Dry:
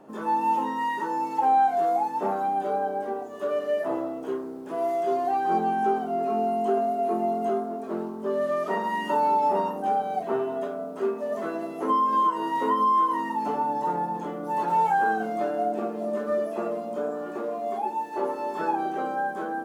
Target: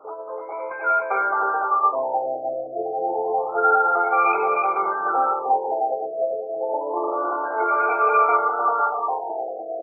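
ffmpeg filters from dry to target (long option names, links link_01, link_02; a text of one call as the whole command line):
ffmpeg -i in.wav -filter_complex "[0:a]highpass=frequency=62:width=0.5412,highpass=frequency=62:width=1.3066,alimiter=limit=-21dB:level=0:latency=1:release=12,dynaudnorm=framelen=220:gausssize=11:maxgain=6dB,asplit=2[link_01][link_02];[link_02]aecho=0:1:610|1006|1264|1432|1541:0.631|0.398|0.251|0.158|0.1[link_03];[link_01][link_03]amix=inputs=2:normalize=0,asetrate=88200,aresample=44100,asuperstop=centerf=1800:order=8:qfactor=2.3,afftfilt=real='re*lt(b*sr/1024,750*pow(2600/750,0.5+0.5*sin(2*PI*0.28*pts/sr)))':imag='im*lt(b*sr/1024,750*pow(2600/750,0.5+0.5*sin(2*PI*0.28*pts/sr)))':win_size=1024:overlap=0.75,volume=2.5dB" out.wav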